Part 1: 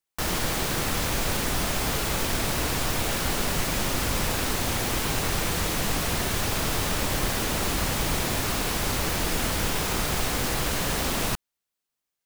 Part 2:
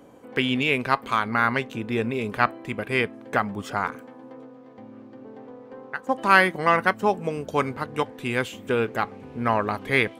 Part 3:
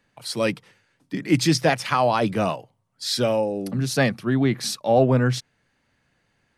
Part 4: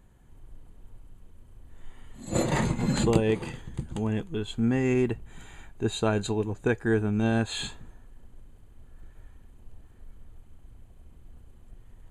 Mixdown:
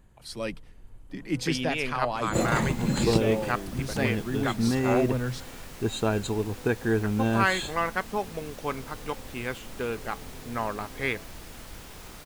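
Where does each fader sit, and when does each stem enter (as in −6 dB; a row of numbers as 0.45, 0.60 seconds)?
−18.5, −8.0, −10.0, −0.5 decibels; 2.15, 1.10, 0.00, 0.00 seconds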